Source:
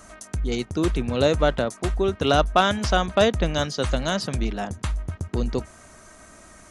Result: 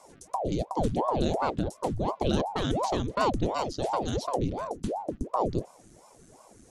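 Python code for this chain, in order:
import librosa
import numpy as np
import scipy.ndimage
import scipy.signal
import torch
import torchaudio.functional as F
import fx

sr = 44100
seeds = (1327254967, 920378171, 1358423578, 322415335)

y = fx.graphic_eq_10(x, sr, hz=(125, 250, 500, 1000, 2000), db=(6, 10, -7, -12, -8))
y = fx.ring_lfo(y, sr, carrier_hz=460.0, swing_pct=90, hz=2.8)
y = y * librosa.db_to_amplitude(-5.0)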